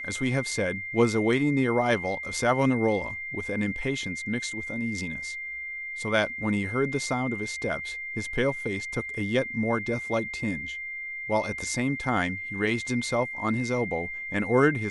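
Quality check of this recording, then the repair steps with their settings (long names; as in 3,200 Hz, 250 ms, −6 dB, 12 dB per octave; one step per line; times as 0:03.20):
whistle 2,100 Hz −33 dBFS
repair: notch filter 2,100 Hz, Q 30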